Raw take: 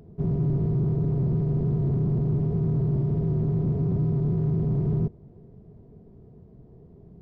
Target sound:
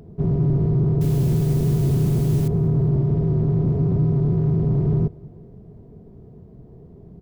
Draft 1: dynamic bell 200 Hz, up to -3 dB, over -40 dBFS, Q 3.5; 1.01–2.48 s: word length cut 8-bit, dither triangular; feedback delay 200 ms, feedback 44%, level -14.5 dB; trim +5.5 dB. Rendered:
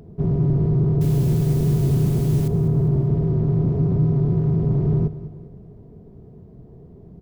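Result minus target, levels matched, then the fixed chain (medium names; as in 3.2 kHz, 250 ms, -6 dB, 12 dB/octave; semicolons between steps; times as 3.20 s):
echo-to-direct +9.5 dB
dynamic bell 200 Hz, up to -3 dB, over -40 dBFS, Q 3.5; 1.01–2.48 s: word length cut 8-bit, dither triangular; feedback delay 200 ms, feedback 44%, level -24 dB; trim +5.5 dB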